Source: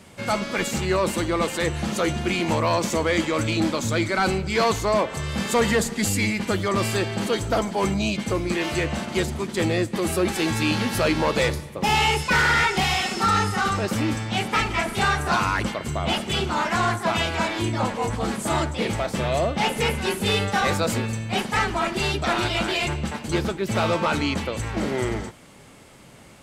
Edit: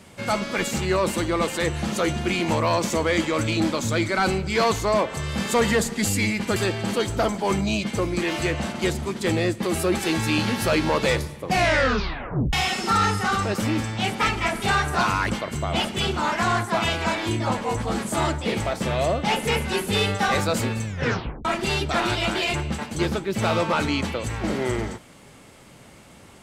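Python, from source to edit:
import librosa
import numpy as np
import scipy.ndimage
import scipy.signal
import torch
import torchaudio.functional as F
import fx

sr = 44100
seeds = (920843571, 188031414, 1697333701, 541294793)

y = fx.edit(x, sr, fx.cut(start_s=6.56, length_s=0.33),
    fx.tape_stop(start_s=11.74, length_s=1.12),
    fx.tape_stop(start_s=21.18, length_s=0.6), tone=tone)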